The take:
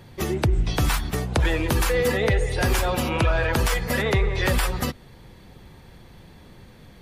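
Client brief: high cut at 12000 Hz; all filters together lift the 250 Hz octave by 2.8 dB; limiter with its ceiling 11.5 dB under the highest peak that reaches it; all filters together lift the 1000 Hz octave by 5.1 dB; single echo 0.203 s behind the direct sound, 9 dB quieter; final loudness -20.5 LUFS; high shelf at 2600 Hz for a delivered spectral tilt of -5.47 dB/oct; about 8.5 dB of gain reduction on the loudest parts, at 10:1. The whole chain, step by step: LPF 12000 Hz; bell 250 Hz +3.5 dB; bell 1000 Hz +7.5 dB; high shelf 2600 Hz -7.5 dB; compressor 10:1, threshold -24 dBFS; limiter -24.5 dBFS; echo 0.203 s -9 dB; gain +12.5 dB

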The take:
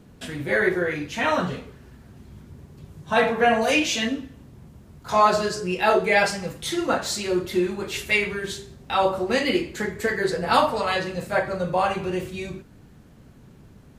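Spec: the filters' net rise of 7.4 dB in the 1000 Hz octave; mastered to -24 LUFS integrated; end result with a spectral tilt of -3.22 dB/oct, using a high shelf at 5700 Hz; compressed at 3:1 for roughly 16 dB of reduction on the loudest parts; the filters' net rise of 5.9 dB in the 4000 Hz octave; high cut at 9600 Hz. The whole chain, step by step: LPF 9600 Hz; bell 1000 Hz +9 dB; bell 4000 Hz +4.5 dB; high shelf 5700 Hz +7 dB; compressor 3:1, threshold -27 dBFS; gain +4.5 dB

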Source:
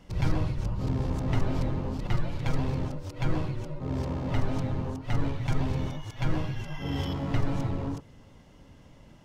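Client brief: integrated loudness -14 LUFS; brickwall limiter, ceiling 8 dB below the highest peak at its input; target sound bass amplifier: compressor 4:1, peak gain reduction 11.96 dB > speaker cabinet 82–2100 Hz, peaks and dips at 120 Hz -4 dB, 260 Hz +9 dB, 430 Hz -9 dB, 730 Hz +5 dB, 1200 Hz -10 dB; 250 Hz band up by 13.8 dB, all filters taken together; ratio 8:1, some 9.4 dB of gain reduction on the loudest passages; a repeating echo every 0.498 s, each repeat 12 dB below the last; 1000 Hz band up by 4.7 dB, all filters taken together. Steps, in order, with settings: bell 250 Hz +9 dB; bell 1000 Hz +5.5 dB; compressor 8:1, threshold -28 dBFS; limiter -28 dBFS; feedback echo 0.498 s, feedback 25%, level -12 dB; compressor 4:1, threshold -45 dBFS; speaker cabinet 82–2100 Hz, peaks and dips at 120 Hz -4 dB, 260 Hz +9 dB, 430 Hz -9 dB, 730 Hz +5 dB, 1200 Hz -10 dB; gain +30 dB

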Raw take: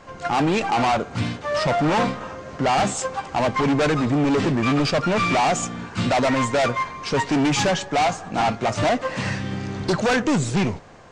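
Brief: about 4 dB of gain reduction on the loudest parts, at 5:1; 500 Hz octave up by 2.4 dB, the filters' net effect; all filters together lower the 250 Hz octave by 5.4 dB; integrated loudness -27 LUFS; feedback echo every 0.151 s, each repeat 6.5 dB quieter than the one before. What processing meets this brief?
bell 250 Hz -8.5 dB; bell 500 Hz +5 dB; compressor 5:1, threshold -20 dBFS; feedback echo 0.151 s, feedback 47%, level -6.5 dB; gain -3.5 dB

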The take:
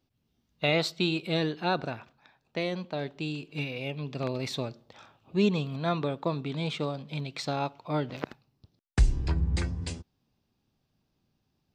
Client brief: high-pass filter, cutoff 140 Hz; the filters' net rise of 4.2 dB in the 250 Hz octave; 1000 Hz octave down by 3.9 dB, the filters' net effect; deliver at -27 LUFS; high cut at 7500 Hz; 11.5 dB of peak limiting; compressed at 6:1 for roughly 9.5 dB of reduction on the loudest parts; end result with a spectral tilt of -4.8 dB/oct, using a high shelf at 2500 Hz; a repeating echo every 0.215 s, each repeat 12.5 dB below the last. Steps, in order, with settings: HPF 140 Hz; LPF 7500 Hz; bell 250 Hz +7.5 dB; bell 1000 Hz -7.5 dB; high shelf 2500 Hz +6.5 dB; compressor 6:1, threshold -26 dBFS; limiter -26 dBFS; feedback echo 0.215 s, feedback 24%, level -12.5 dB; gain +9.5 dB

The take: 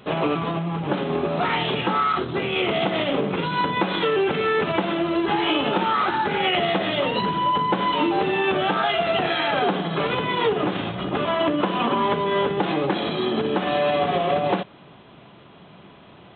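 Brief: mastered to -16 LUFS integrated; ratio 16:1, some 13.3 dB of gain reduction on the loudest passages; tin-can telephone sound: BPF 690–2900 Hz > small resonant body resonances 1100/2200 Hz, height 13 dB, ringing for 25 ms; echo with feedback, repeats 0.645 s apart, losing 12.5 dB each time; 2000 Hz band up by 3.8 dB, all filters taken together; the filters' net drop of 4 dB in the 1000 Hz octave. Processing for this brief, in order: bell 1000 Hz -5.5 dB; bell 2000 Hz +7.5 dB; compressor 16:1, threshold -30 dBFS; BPF 690–2900 Hz; feedback echo 0.645 s, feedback 24%, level -12.5 dB; small resonant body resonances 1100/2200 Hz, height 13 dB, ringing for 25 ms; gain +16.5 dB

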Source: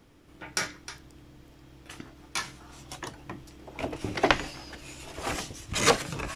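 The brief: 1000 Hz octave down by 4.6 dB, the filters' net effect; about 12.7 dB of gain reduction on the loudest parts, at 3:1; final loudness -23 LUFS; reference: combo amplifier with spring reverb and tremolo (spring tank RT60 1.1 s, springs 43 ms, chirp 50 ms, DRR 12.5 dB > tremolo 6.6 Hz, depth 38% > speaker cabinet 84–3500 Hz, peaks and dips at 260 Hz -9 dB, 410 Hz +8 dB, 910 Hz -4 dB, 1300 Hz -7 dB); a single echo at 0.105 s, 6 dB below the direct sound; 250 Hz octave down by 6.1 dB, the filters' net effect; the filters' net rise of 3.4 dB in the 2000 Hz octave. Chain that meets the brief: bell 250 Hz -7.5 dB; bell 1000 Hz -3 dB; bell 2000 Hz +6.5 dB; compressor 3:1, threshold -33 dBFS; echo 0.105 s -6 dB; spring tank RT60 1.1 s, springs 43 ms, chirp 50 ms, DRR 12.5 dB; tremolo 6.6 Hz, depth 38%; speaker cabinet 84–3500 Hz, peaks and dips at 260 Hz -9 dB, 410 Hz +8 dB, 910 Hz -4 dB, 1300 Hz -7 dB; gain +17.5 dB

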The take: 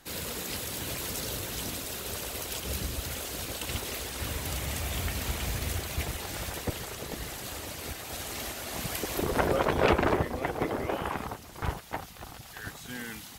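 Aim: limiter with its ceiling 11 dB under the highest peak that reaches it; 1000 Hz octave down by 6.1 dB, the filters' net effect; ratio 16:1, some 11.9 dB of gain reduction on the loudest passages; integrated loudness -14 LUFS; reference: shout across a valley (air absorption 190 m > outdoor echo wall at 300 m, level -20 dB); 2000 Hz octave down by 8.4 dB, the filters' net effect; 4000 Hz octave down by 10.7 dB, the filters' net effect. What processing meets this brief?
bell 1000 Hz -5.5 dB; bell 2000 Hz -5.5 dB; bell 4000 Hz -5 dB; compressor 16:1, threshold -32 dBFS; limiter -29 dBFS; air absorption 190 m; outdoor echo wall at 300 m, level -20 dB; gain +29 dB

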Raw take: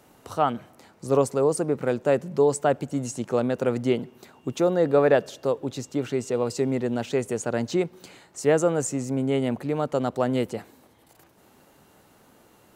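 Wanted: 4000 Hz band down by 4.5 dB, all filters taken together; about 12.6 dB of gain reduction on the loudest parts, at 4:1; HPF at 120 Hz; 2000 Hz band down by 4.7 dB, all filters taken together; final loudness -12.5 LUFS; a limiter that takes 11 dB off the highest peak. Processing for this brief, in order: HPF 120 Hz; bell 2000 Hz -5.5 dB; bell 4000 Hz -4 dB; compressor 4:1, threshold -31 dBFS; gain +27.5 dB; limiter -2.5 dBFS

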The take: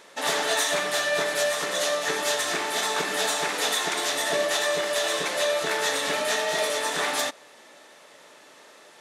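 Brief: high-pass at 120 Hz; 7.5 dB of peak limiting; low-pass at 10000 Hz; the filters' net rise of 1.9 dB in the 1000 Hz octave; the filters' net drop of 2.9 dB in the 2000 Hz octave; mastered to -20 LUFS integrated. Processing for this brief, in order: HPF 120 Hz; LPF 10000 Hz; bell 1000 Hz +3.5 dB; bell 2000 Hz -4.5 dB; gain +8.5 dB; limiter -12 dBFS

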